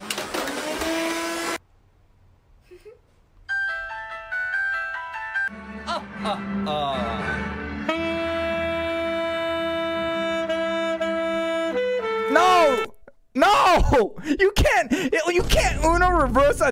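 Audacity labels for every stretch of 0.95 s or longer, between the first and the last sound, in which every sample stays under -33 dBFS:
1.560000	3.490000	silence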